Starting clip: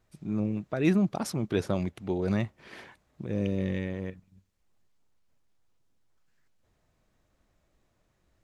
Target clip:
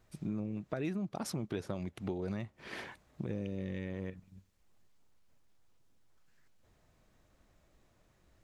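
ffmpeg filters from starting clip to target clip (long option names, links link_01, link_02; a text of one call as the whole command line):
ffmpeg -i in.wav -af "acompressor=threshold=-37dB:ratio=8,volume=3dB" out.wav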